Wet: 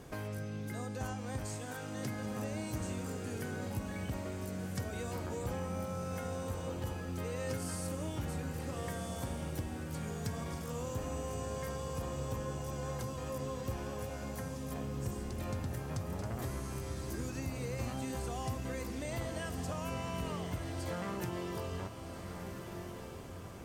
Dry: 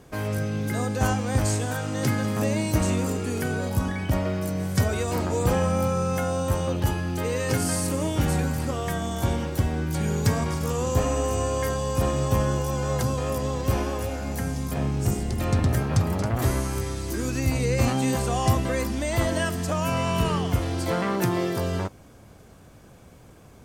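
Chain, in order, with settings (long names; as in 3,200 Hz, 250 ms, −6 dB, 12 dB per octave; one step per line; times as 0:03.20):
downward compressor 2.5 to 1, threshold −43 dBFS, peak gain reduction 18 dB
on a send: feedback delay with all-pass diffusion 1,395 ms, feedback 42%, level −6.5 dB
on the sum: level −1 dB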